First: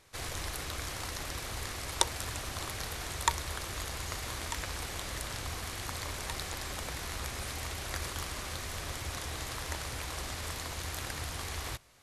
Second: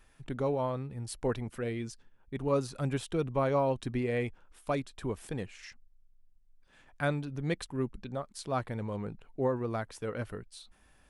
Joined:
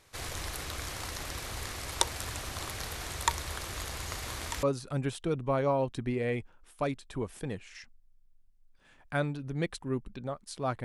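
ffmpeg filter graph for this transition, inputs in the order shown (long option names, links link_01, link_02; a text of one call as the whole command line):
ffmpeg -i cue0.wav -i cue1.wav -filter_complex "[0:a]apad=whole_dur=10.84,atrim=end=10.84,atrim=end=4.632[link_01];[1:a]atrim=start=2.508:end=8.72[link_02];[link_01][link_02]acrossfade=duration=0.004:curve1=hsin:curve2=hsin" out.wav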